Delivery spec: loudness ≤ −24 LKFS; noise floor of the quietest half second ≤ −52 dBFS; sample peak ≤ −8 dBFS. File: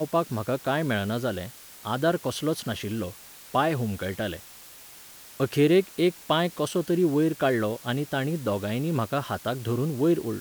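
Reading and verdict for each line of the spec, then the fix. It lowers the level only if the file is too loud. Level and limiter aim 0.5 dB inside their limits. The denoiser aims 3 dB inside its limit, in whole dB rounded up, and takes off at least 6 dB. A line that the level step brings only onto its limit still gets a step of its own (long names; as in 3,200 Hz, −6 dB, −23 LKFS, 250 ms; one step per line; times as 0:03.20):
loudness −26.5 LKFS: in spec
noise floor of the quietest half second −47 dBFS: out of spec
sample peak −8.5 dBFS: in spec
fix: broadband denoise 8 dB, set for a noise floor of −47 dBFS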